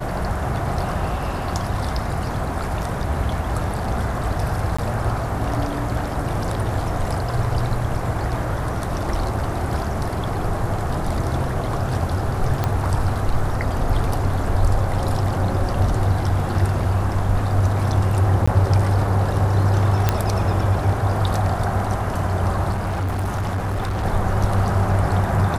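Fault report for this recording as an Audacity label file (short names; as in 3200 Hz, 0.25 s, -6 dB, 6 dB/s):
4.770000	4.790000	gap 15 ms
12.640000	12.640000	pop -8 dBFS
18.460000	18.480000	gap 15 ms
20.090000	20.090000	pop -3 dBFS
22.710000	24.050000	clipped -20 dBFS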